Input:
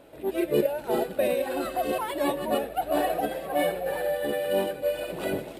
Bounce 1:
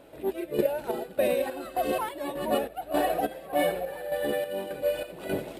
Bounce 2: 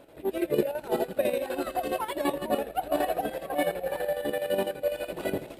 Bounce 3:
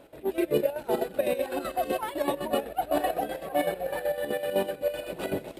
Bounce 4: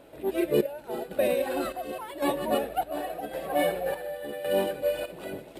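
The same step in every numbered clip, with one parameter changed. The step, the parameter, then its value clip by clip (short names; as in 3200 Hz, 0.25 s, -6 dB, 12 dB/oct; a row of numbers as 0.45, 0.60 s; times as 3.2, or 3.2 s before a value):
chopper, rate: 1.7, 12, 7.9, 0.9 Hz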